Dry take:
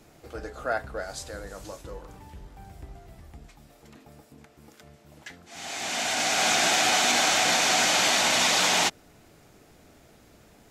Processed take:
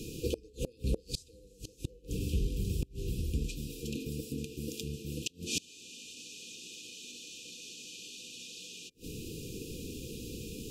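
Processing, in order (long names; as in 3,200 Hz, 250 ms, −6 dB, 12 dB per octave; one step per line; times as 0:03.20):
downward compressor, threshold −26 dBFS, peak gain reduction 7 dB
brick-wall band-stop 520–2,400 Hz
gate with flip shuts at −33 dBFS, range −30 dB
level +14 dB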